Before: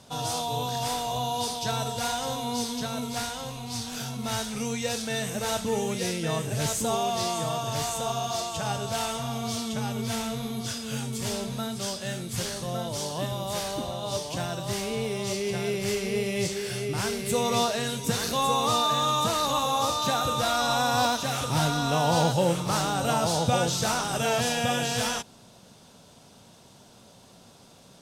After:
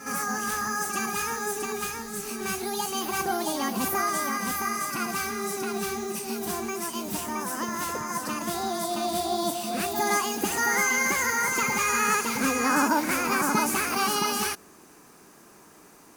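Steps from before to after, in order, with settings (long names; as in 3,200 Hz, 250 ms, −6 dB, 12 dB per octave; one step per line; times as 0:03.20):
wrong playback speed 45 rpm record played at 78 rpm
backwards echo 61 ms −10 dB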